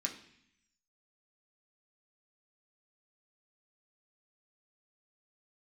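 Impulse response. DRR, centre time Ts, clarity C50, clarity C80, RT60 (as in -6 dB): -0.5 dB, 16 ms, 10.0 dB, 13.5 dB, 0.65 s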